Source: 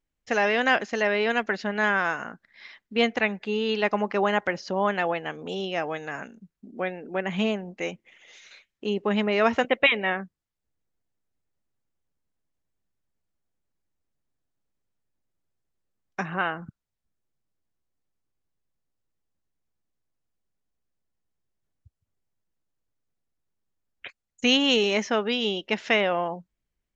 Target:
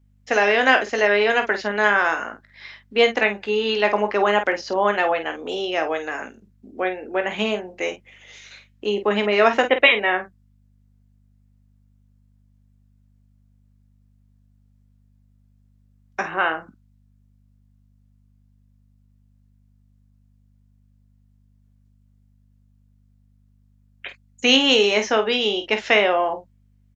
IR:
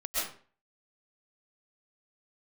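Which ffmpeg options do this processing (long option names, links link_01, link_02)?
-af "highpass=frequency=260:width=0.5412,highpass=frequency=260:width=1.3066,aeval=exprs='val(0)+0.000708*(sin(2*PI*50*n/s)+sin(2*PI*2*50*n/s)/2+sin(2*PI*3*50*n/s)/3+sin(2*PI*4*50*n/s)/4+sin(2*PI*5*50*n/s)/5)':channel_layout=same,aecho=1:1:19|49:0.335|0.335,volume=5dB"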